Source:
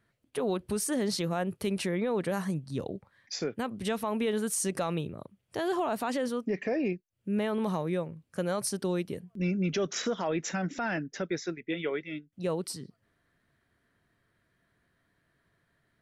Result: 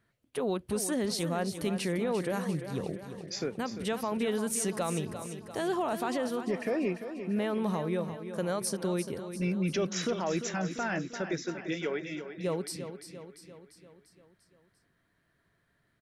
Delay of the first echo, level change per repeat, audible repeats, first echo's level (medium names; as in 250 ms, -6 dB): 345 ms, -5.0 dB, 5, -10.0 dB